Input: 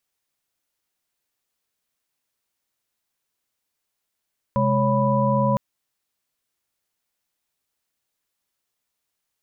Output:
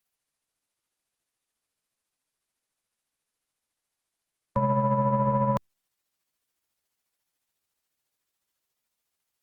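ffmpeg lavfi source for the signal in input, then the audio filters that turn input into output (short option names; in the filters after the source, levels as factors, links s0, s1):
-f lavfi -i "aevalsrc='0.075*(sin(2*PI*130.81*t)+sin(2*PI*207.65*t)+sin(2*PI*554.37*t)+sin(2*PI*987.77*t))':d=1.01:s=44100"
-filter_complex "[0:a]acrossover=split=110|770[s0][s1][s2];[s1]asoftclip=type=tanh:threshold=0.075[s3];[s0][s3][s2]amix=inputs=3:normalize=0,tremolo=f=14:d=0.41" -ar 48000 -c:a libopus -b:a 32k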